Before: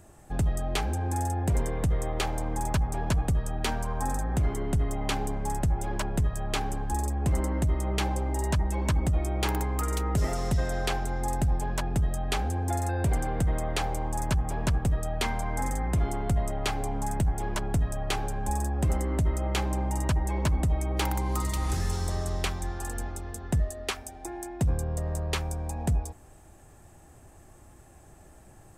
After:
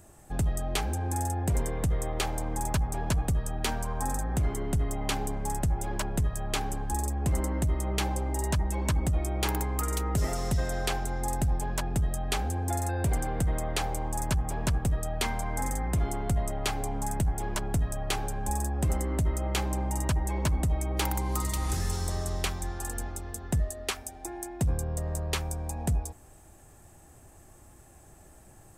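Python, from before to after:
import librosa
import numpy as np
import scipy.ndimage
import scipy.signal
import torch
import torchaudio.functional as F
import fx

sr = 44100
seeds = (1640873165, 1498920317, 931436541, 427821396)

y = fx.high_shelf(x, sr, hz=6400.0, db=6.5)
y = y * librosa.db_to_amplitude(-1.5)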